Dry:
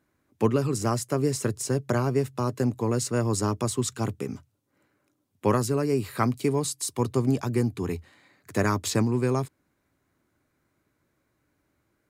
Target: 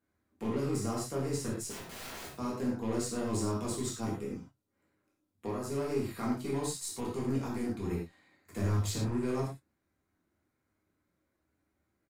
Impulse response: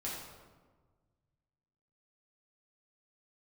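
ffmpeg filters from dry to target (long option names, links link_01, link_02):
-filter_complex "[0:a]asettb=1/sr,asplit=3[link_01][link_02][link_03];[link_01]atrim=end=4.164[link_04];[link_02]atrim=start=4.16:end=5.69,asetpts=PTS-STARTPTS,afade=type=in:duration=0.004:curve=qsin,afade=type=out:start_time=1.526:duration=0.004:curve=qsin,acompressor=threshold=-26dB:ratio=12[link_05];[link_03]atrim=start=5.686[link_06];[link_04][link_05]acrossfade=duration=0.004:curve1=hsin:curve2=qsin[link_07];[link_07][link_06]acrossfade=duration=0.004:curve1=qsin:curve2=hsin,asettb=1/sr,asplit=3[link_08][link_09][link_10];[link_08]atrim=end=8.614[link_11];[link_09]atrim=start=8.61:end=9.09,asetpts=PTS-STARTPTS,afade=type=in:duration=0.004:curve=qsin,afade=type=out:start_time=0.476:duration=0.004:curve=qsin,equalizer=frequency=110:width_type=o:width=0.83:gain=12[link_12];[link_10]atrim=start=9.086[link_13];[link_11][link_12]acrossfade=duration=0.004:curve1=hsin:curve2=qsin[link_14];[link_14][link_13]acrossfade=duration=0.004:curve1=qsin:curve2=hsin,alimiter=limit=-17.5dB:level=0:latency=1:release=15,aeval=exprs='0.133*(cos(1*acos(clip(val(0)/0.133,-1,1)))-cos(1*PI/2))+0.0106*(cos(5*acos(clip(val(0)/0.133,-1,1)))-cos(5*PI/2))+0.00944*(cos(7*acos(clip(val(0)/0.133,-1,1)))-cos(7*PI/2))+0.00237*(cos(8*acos(clip(val(0)/0.133,-1,1)))-cos(8*PI/2))':channel_layout=same,asettb=1/sr,asplit=3[link_15][link_16][link_17];[link_15]atrim=end=1.704[link_18];[link_16]atrim=start=1.7:end=2.31,asetpts=PTS-STARTPTS,afade=type=in:duration=0.004:curve=qsin,afade=type=out:start_time=0.606:duration=0.004:curve=qsin,aeval=exprs='(mod(39.8*val(0)+1,2)-1)/39.8':channel_layout=same[link_19];[link_17]atrim=start=2.306[link_20];[link_18][link_19]acrossfade=duration=0.004:curve1=hsin:curve2=qsin[link_21];[link_21][link_20]acrossfade=duration=0.004:curve1=qsin:curve2=hsin,asplit=2[link_22][link_23];[link_23]adelay=29,volume=-14dB[link_24];[link_22][link_24]amix=inputs=2:normalize=0[link_25];[1:a]atrim=start_sample=2205,afade=type=out:start_time=0.17:duration=0.01,atrim=end_sample=7938[link_26];[link_25][link_26]afir=irnorm=-1:irlink=0,volume=-7.5dB"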